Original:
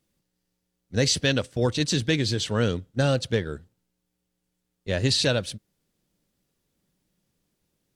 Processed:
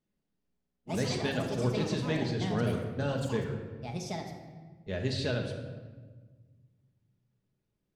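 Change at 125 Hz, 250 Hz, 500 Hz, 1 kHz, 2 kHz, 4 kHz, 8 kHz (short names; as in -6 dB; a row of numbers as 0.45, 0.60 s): -6.0, -5.0, -6.0, -2.5, -8.5, -13.0, -14.5 dB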